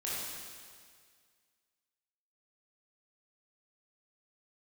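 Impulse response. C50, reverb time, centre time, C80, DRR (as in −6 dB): −3.0 dB, 1.9 s, 130 ms, −0.5 dB, −8.0 dB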